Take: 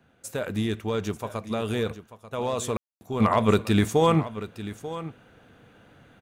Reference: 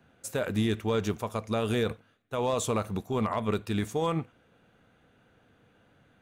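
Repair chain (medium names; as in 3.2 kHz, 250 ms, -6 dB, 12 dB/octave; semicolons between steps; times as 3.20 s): room tone fill 2.77–3.01 s; inverse comb 889 ms -14 dB; gain correction -8.5 dB, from 3.20 s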